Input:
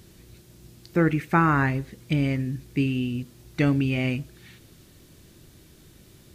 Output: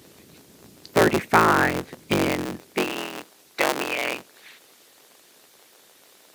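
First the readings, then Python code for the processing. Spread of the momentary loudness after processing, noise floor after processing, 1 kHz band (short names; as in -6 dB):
15 LU, -55 dBFS, +5.5 dB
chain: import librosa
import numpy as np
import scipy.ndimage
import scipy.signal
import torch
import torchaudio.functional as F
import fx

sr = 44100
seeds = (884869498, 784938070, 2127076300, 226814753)

y = fx.cycle_switch(x, sr, every=3, mode='inverted')
y = fx.filter_sweep_highpass(y, sr, from_hz=170.0, to_hz=560.0, start_s=2.27, end_s=3.04, q=0.71)
y = fx.hpss(y, sr, part='percussive', gain_db=6)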